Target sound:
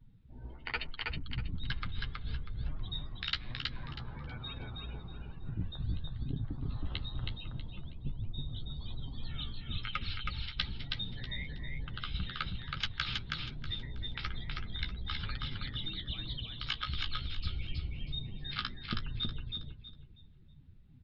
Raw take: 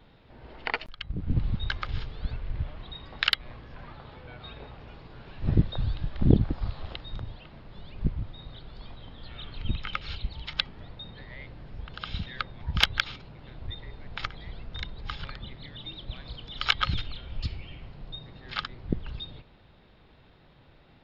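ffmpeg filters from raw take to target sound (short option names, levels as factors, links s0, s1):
-filter_complex "[0:a]afftdn=nr=23:nf=-48,equalizer=f=590:t=o:w=1.5:g=-11,areverse,acompressor=threshold=0.0178:ratio=16,areverse,flanger=delay=7.2:depth=9.1:regen=25:speed=1.1:shape=sinusoidal,asplit=2[s0][s1];[s1]aecho=0:1:321|642|963|1284:0.708|0.198|0.0555|0.0155[s2];[s0][s2]amix=inputs=2:normalize=0,aresample=16000,aresample=44100,adynamicequalizer=threshold=0.00178:dfrequency=3300:dqfactor=0.7:tfrequency=3300:tqfactor=0.7:attack=5:release=100:ratio=0.375:range=1.5:mode=boostabove:tftype=highshelf,volume=2"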